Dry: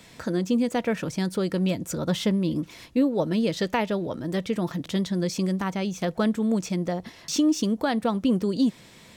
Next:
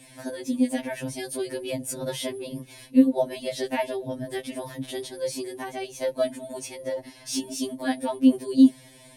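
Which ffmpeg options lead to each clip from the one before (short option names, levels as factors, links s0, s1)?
-af "superequalizer=6b=2.24:7b=0.631:8b=2:10b=0.355:16b=3.98,aeval=exprs='val(0)+0.000891*(sin(2*PI*60*n/s)+sin(2*PI*2*60*n/s)/2+sin(2*PI*3*60*n/s)/3+sin(2*PI*4*60*n/s)/4+sin(2*PI*5*60*n/s)/5)':c=same,afftfilt=real='re*2.45*eq(mod(b,6),0)':imag='im*2.45*eq(mod(b,6),0)':win_size=2048:overlap=0.75"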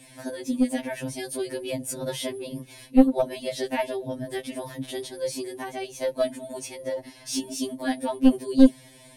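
-af "aeval=exprs='0.501*(cos(1*acos(clip(val(0)/0.501,-1,1)))-cos(1*PI/2))+0.2*(cos(2*acos(clip(val(0)/0.501,-1,1)))-cos(2*PI/2))+0.0126*(cos(8*acos(clip(val(0)/0.501,-1,1)))-cos(8*PI/2))':c=same"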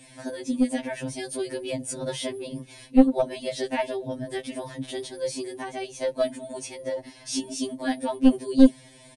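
-af "aresample=22050,aresample=44100"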